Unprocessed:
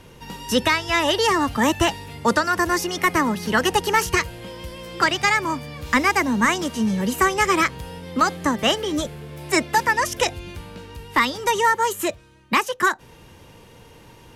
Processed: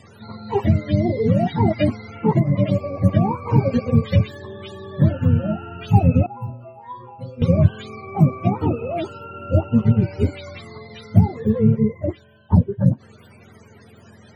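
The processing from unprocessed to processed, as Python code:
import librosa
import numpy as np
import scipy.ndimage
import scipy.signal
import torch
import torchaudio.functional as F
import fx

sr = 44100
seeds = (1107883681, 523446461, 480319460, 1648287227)

y = fx.octave_mirror(x, sr, pivot_hz=450.0)
y = fx.stiff_resonator(y, sr, f0_hz=120.0, decay_s=0.61, stiffness=0.008, at=(6.26, 7.42))
y = y * 10.0 ** (2.5 / 20.0)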